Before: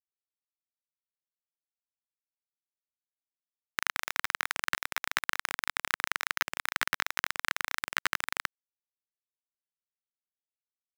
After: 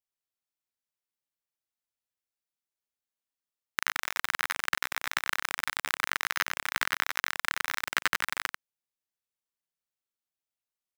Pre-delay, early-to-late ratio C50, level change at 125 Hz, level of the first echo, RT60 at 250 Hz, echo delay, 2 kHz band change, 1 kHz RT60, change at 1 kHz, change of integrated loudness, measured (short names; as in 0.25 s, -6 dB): none, none, +1.5 dB, -7.5 dB, none, 92 ms, +1.5 dB, none, +1.5 dB, +1.5 dB